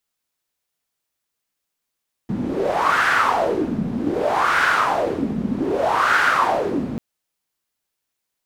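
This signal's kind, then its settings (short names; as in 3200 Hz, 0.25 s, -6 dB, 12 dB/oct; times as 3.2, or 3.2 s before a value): wind-like swept noise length 4.69 s, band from 210 Hz, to 1500 Hz, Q 4.6, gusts 3, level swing 7 dB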